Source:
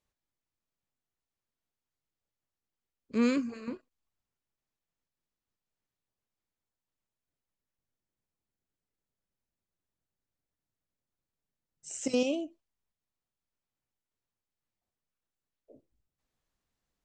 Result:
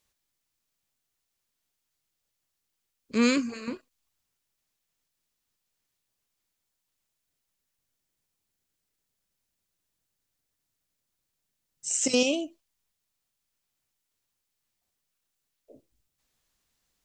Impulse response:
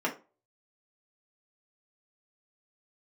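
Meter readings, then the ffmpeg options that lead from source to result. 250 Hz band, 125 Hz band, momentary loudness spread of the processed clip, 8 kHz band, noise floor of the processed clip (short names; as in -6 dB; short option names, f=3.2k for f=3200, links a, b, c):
+3.0 dB, +3.0 dB, 15 LU, +13.0 dB, -82 dBFS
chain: -af "highshelf=f=2k:g=10.5,volume=3dB"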